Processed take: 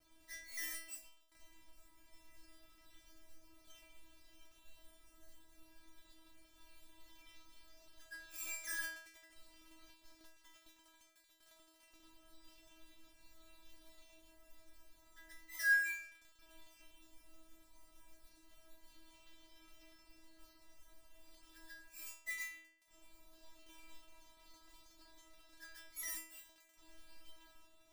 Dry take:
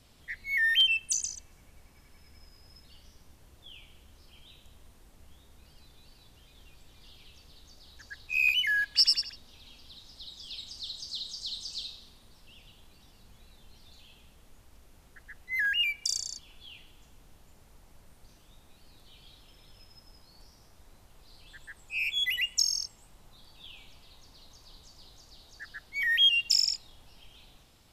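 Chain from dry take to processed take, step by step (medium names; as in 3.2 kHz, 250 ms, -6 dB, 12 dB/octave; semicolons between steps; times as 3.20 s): dead-time distortion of 0.17 ms; modulation noise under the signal 14 dB; inharmonic resonator 320 Hz, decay 0.66 s, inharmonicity 0.002; trim +12 dB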